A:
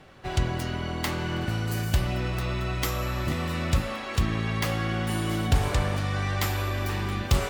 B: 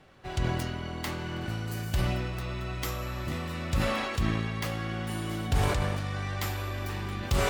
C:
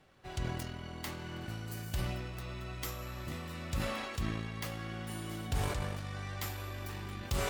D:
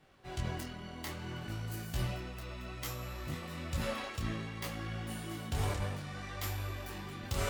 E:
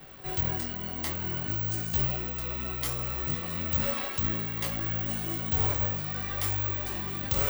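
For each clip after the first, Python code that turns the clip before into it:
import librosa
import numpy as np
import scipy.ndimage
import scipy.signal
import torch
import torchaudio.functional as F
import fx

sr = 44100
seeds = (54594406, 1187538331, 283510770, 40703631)

y1 = fx.sustainer(x, sr, db_per_s=28.0)
y1 = y1 * 10.0 ** (-6.0 / 20.0)
y2 = fx.high_shelf(y1, sr, hz=5600.0, db=5.5)
y2 = fx.transient(y2, sr, attack_db=0, sustain_db=-5)
y2 = y2 * 10.0 ** (-7.5 / 20.0)
y3 = fx.detune_double(y2, sr, cents=21)
y3 = y3 * 10.0 ** (3.5 / 20.0)
y4 = (np.kron(y3[::2], np.eye(2)[0]) * 2)[:len(y3)]
y4 = fx.band_squash(y4, sr, depth_pct=40)
y4 = y4 * 10.0 ** (4.5 / 20.0)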